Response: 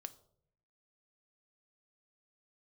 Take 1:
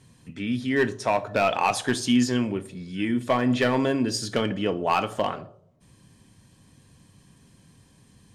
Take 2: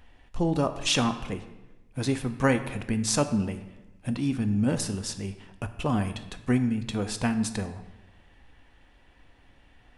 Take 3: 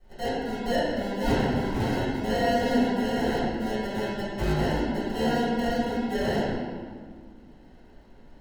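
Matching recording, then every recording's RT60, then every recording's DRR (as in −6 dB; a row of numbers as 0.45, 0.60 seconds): 1; 0.65, 1.1, 1.8 seconds; 10.0, 8.5, −13.0 decibels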